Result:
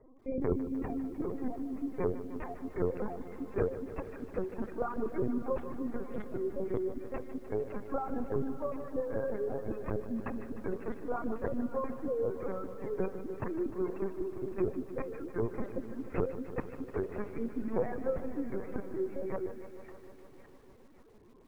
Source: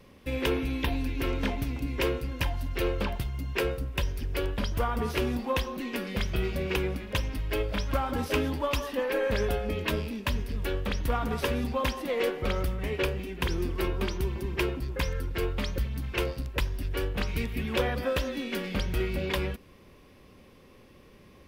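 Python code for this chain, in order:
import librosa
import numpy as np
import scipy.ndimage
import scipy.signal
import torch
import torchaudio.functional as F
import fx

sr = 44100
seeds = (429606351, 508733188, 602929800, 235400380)

p1 = scipy.signal.medfilt(x, 15)
p2 = fx.lowpass(p1, sr, hz=2600.0, slope=6)
p3 = fx.dereverb_blind(p2, sr, rt60_s=0.75)
p4 = scipy.signal.sosfilt(scipy.signal.butter(12, 210.0, 'highpass', fs=sr, output='sos'), p3)
p5 = fx.spec_gate(p4, sr, threshold_db=-20, keep='strong')
p6 = fx.low_shelf(p5, sr, hz=310.0, db=10.5)
p7 = fx.rider(p6, sr, range_db=5, speed_s=2.0)
p8 = p7 + fx.echo_wet_highpass(p7, sr, ms=552, feedback_pct=54, hz=2000.0, wet_db=-6, dry=0)
p9 = fx.lpc_vocoder(p8, sr, seeds[0], excitation='pitch_kept', order=8)
p10 = fx.echo_crushed(p9, sr, ms=151, feedback_pct=80, bits=9, wet_db=-13.0)
y = F.gain(torch.from_numpy(p10), -5.0).numpy()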